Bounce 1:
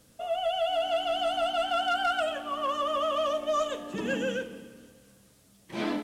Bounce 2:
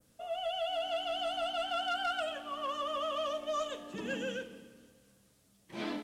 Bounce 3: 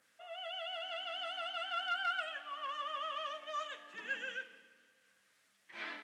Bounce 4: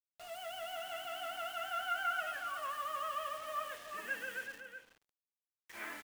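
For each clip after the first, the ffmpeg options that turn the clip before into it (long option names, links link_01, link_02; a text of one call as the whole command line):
ffmpeg -i in.wav -af "adynamicequalizer=threshold=0.00708:dfrequency=3900:dqfactor=0.74:tfrequency=3900:tqfactor=0.74:attack=5:release=100:ratio=0.375:range=2:mode=boostabove:tftype=bell,volume=-7.5dB" out.wav
ffmpeg -i in.wav -af "acompressor=mode=upward:threshold=-56dB:ratio=2.5,bandpass=frequency=1800:width_type=q:width=2.3:csg=0,crystalizer=i=1.5:c=0,volume=3.5dB" out.wav
ffmpeg -i in.wav -filter_complex "[0:a]acrossover=split=2800[link_01][link_02];[link_02]aeval=exprs='(mod(631*val(0)+1,2)-1)/631':channel_layout=same[link_03];[link_01][link_03]amix=inputs=2:normalize=0,acrusher=bits=8:mix=0:aa=0.000001,asplit=2[link_04][link_05];[link_05]adelay=373.2,volume=-7dB,highshelf=frequency=4000:gain=-8.4[link_06];[link_04][link_06]amix=inputs=2:normalize=0,volume=1dB" out.wav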